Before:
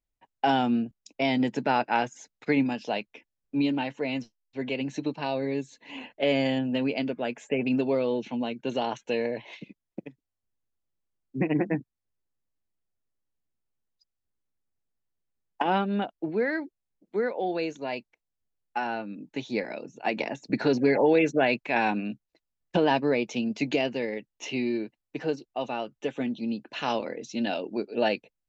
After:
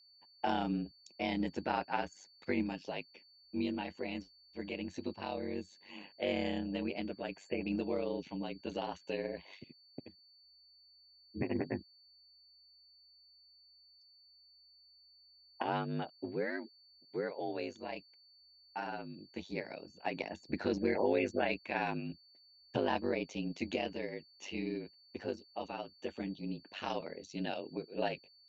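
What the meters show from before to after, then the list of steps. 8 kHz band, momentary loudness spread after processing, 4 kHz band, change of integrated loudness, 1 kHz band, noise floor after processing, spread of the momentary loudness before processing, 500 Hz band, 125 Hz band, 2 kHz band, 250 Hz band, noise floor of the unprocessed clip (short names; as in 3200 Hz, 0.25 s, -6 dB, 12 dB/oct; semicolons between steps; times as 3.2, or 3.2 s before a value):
n/a, 12 LU, -9.0 dB, -10.0 dB, -10.0 dB, -64 dBFS, 12 LU, -10.0 dB, -8.0 dB, -10.0 dB, -10.5 dB, -85 dBFS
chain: ring modulator 49 Hz; whine 4500 Hz -54 dBFS; gain -7 dB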